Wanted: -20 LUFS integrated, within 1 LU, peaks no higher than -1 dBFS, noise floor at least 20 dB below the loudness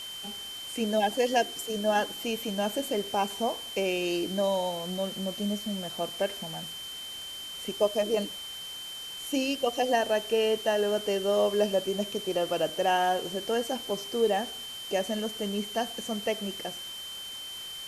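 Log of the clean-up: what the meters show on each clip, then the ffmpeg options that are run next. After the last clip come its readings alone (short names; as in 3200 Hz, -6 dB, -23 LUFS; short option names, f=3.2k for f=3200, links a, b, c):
steady tone 3100 Hz; tone level -38 dBFS; noise floor -40 dBFS; noise floor target -50 dBFS; loudness -29.5 LUFS; peak -12.5 dBFS; loudness target -20.0 LUFS
-> -af "bandreject=f=3.1k:w=30"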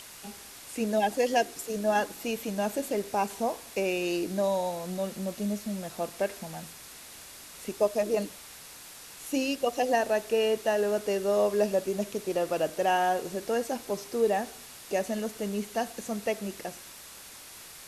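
steady tone none; noise floor -47 dBFS; noise floor target -50 dBFS
-> -af "afftdn=nr=6:nf=-47"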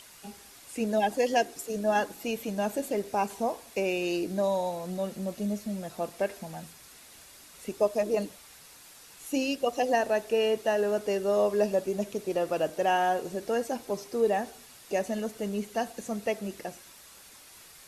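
noise floor -52 dBFS; loudness -29.5 LUFS; peak -13.0 dBFS; loudness target -20.0 LUFS
-> -af "volume=9.5dB"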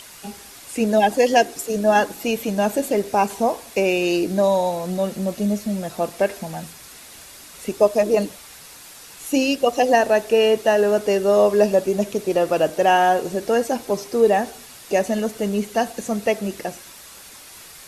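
loudness -20.0 LUFS; peak -3.5 dBFS; noise floor -43 dBFS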